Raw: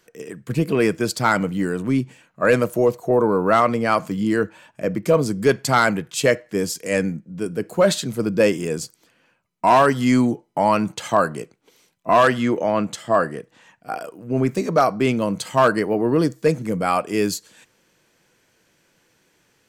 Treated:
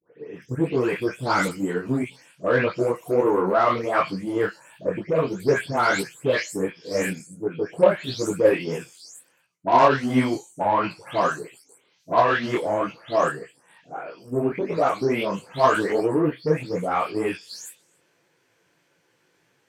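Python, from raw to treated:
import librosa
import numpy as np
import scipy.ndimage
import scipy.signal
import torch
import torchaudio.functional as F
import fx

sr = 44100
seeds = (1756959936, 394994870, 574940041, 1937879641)

p1 = fx.spec_delay(x, sr, highs='late', ms=342)
p2 = fx.high_shelf(p1, sr, hz=4000.0, db=-7.5)
p3 = fx.cheby_harmonics(p2, sr, harmonics=(5, 7, 8), levels_db=(-25, -24, -34), full_scale_db=-4.0)
p4 = fx.highpass(p3, sr, hz=150.0, slope=6)
p5 = fx.peak_eq(p4, sr, hz=220.0, db=-11.5, octaves=0.23)
p6 = fx.level_steps(p5, sr, step_db=14)
p7 = p5 + (p6 * 10.0 ** (-0.5 / 20.0))
y = fx.detune_double(p7, sr, cents=51)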